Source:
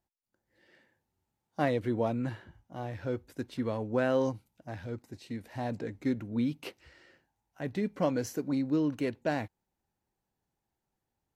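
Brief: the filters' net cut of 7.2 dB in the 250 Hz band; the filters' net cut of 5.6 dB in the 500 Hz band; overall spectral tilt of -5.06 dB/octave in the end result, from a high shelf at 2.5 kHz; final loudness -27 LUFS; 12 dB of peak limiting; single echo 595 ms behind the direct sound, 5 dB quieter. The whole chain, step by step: peaking EQ 250 Hz -7 dB; peaking EQ 500 Hz -5.5 dB; treble shelf 2.5 kHz +8.5 dB; peak limiter -27 dBFS; delay 595 ms -5 dB; trim +13 dB

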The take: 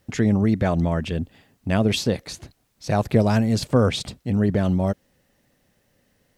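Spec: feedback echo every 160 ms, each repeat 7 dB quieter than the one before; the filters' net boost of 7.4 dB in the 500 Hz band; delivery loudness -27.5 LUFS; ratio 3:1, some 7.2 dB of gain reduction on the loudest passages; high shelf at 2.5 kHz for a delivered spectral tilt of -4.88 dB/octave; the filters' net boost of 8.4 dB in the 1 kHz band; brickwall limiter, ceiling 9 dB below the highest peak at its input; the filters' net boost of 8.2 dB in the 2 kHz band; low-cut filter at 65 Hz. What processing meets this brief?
high-pass 65 Hz; peaking EQ 500 Hz +6.5 dB; peaking EQ 1 kHz +7 dB; peaking EQ 2 kHz +6.5 dB; treble shelf 2.5 kHz +3 dB; compression 3:1, threshold -17 dBFS; peak limiter -13 dBFS; feedback delay 160 ms, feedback 45%, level -7 dB; trim -2.5 dB

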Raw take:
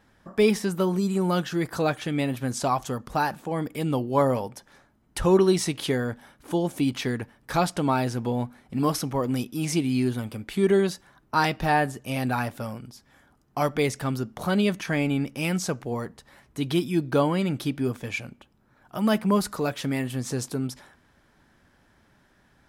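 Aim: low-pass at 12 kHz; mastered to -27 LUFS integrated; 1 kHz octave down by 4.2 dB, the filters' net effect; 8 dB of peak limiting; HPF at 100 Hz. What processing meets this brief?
high-pass 100 Hz; low-pass 12 kHz; peaking EQ 1 kHz -5.5 dB; trim +2.5 dB; peak limiter -15 dBFS

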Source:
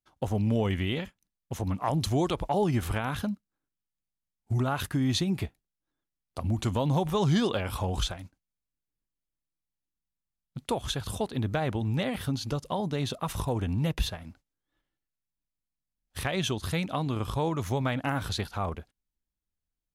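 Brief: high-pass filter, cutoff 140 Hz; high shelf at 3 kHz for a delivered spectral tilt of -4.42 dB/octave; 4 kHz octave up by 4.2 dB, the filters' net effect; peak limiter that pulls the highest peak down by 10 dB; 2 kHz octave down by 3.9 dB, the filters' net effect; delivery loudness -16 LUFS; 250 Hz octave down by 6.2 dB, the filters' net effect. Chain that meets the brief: high-pass 140 Hz; peaking EQ 250 Hz -7.5 dB; peaking EQ 2 kHz -8 dB; treble shelf 3 kHz +3.5 dB; peaking EQ 4 kHz +5 dB; trim +18.5 dB; peak limiter -3.5 dBFS

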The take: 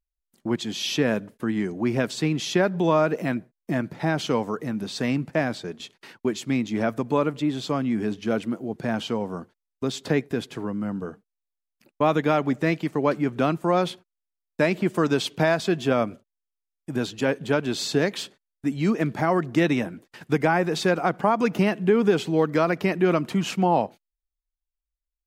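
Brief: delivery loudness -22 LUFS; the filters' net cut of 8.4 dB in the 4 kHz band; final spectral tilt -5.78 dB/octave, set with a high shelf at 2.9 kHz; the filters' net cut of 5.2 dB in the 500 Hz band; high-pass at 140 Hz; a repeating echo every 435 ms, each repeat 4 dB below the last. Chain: high-pass 140 Hz; peaking EQ 500 Hz -6.5 dB; treble shelf 2.9 kHz -8.5 dB; peaking EQ 4 kHz -4 dB; feedback delay 435 ms, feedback 63%, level -4 dB; trim +4.5 dB

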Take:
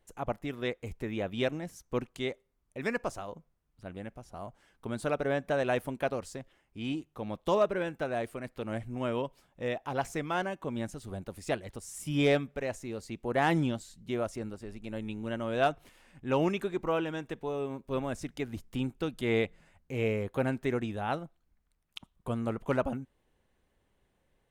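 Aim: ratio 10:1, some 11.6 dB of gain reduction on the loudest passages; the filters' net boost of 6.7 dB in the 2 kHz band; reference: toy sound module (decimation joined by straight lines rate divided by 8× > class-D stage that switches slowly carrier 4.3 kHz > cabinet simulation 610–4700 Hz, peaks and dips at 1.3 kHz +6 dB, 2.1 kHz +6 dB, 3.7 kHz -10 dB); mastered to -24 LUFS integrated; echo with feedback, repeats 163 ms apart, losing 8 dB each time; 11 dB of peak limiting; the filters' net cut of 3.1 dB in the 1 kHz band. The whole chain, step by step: peaking EQ 1 kHz -8 dB; peaking EQ 2 kHz +6.5 dB; compression 10:1, threshold -34 dBFS; peak limiter -31 dBFS; feedback delay 163 ms, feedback 40%, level -8 dB; decimation joined by straight lines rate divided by 8×; class-D stage that switches slowly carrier 4.3 kHz; cabinet simulation 610–4700 Hz, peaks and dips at 1.3 kHz +6 dB, 2.1 kHz +6 dB, 3.7 kHz -10 dB; trim +24 dB

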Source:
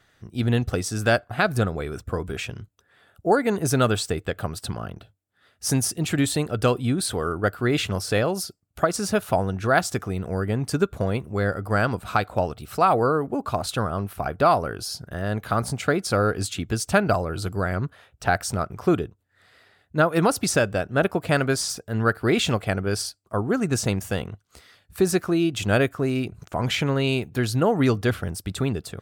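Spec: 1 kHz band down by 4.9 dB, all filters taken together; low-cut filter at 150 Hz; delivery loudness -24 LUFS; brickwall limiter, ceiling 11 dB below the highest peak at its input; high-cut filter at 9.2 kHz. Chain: high-pass 150 Hz; low-pass 9.2 kHz; peaking EQ 1 kHz -7.5 dB; trim +6.5 dB; peak limiter -12.5 dBFS

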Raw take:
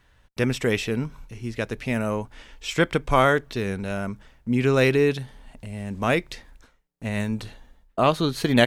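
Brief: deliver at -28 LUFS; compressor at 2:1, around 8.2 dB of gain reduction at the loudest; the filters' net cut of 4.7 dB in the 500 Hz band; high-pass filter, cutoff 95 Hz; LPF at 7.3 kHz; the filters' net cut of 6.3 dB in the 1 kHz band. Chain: high-pass 95 Hz; low-pass 7.3 kHz; peaking EQ 500 Hz -4 dB; peaking EQ 1 kHz -7.5 dB; compression 2:1, threshold -30 dBFS; trim +5 dB

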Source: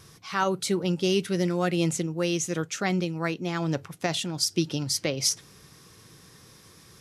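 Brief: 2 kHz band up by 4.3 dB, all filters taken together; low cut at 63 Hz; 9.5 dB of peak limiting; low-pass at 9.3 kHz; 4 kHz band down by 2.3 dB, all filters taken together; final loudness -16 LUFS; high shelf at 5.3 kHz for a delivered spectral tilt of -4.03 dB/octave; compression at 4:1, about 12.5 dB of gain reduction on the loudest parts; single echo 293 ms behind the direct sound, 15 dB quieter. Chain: high-pass 63 Hz; low-pass 9.3 kHz; peaking EQ 2 kHz +7 dB; peaking EQ 4 kHz -8 dB; treble shelf 5.3 kHz +5 dB; compression 4:1, threshold -35 dBFS; peak limiter -27.5 dBFS; delay 293 ms -15 dB; trim +22.5 dB

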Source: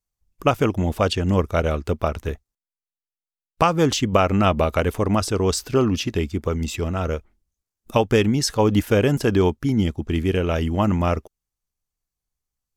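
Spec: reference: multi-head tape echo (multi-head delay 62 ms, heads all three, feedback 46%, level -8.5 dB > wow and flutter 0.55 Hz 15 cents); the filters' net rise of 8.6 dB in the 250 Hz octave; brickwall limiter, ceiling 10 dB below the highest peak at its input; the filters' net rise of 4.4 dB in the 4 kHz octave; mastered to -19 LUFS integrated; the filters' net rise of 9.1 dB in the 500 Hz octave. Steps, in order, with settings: peaking EQ 250 Hz +8.5 dB; peaking EQ 500 Hz +8.5 dB; peaking EQ 4 kHz +6 dB; peak limiter -5.5 dBFS; multi-head delay 62 ms, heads all three, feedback 46%, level -8.5 dB; wow and flutter 0.55 Hz 15 cents; trim -4.5 dB

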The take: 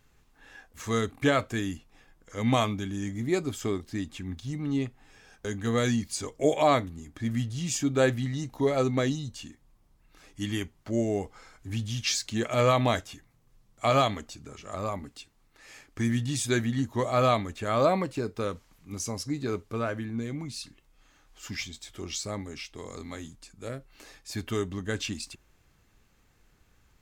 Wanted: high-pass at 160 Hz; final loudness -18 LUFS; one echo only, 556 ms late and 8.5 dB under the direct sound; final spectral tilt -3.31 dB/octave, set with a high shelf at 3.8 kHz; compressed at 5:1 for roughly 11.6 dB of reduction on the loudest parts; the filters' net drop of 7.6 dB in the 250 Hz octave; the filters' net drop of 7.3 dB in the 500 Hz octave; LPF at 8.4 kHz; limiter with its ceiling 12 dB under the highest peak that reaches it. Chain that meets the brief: high-pass 160 Hz; low-pass 8.4 kHz; peaking EQ 250 Hz -6 dB; peaking EQ 500 Hz -8 dB; treble shelf 3.8 kHz +7.5 dB; compression 5:1, threshold -34 dBFS; peak limiter -31 dBFS; delay 556 ms -8.5 dB; trim +24.5 dB

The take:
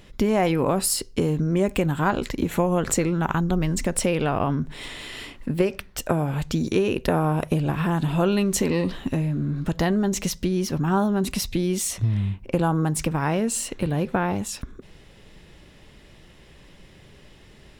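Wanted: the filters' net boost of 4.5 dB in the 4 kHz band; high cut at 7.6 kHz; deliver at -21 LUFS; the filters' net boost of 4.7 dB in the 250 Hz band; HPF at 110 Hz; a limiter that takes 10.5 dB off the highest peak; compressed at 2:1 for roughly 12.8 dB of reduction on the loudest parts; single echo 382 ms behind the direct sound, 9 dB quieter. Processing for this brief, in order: high-pass 110 Hz; low-pass 7.6 kHz; peaking EQ 250 Hz +7.5 dB; peaking EQ 4 kHz +6.5 dB; compression 2:1, threshold -39 dBFS; peak limiter -24.5 dBFS; delay 382 ms -9 dB; trim +13 dB

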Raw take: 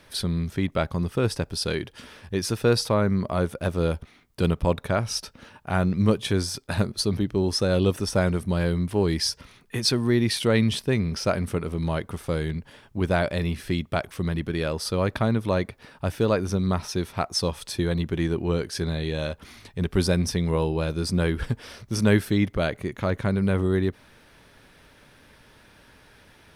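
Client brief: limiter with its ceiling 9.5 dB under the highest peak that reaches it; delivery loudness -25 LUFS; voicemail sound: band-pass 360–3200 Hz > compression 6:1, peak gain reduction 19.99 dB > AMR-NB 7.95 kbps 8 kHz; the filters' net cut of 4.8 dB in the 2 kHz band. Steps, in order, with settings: peaking EQ 2 kHz -6 dB; peak limiter -17.5 dBFS; band-pass 360–3200 Hz; compression 6:1, threshold -46 dBFS; trim +26 dB; AMR-NB 7.95 kbps 8 kHz

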